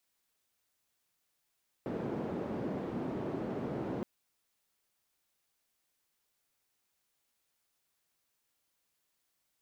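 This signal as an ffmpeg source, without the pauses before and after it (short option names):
-f lavfi -i "anoisesrc=c=white:d=2.17:r=44100:seed=1,highpass=f=170,lowpass=f=340,volume=-11.8dB"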